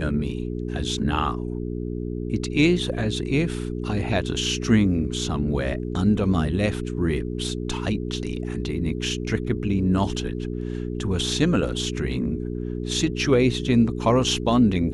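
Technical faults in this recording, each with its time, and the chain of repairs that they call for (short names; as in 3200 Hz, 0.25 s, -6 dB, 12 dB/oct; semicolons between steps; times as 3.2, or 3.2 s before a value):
hum 60 Hz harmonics 7 -29 dBFS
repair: de-hum 60 Hz, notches 7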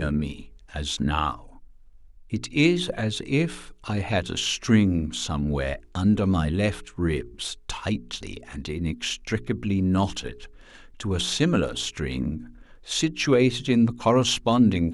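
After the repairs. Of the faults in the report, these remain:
none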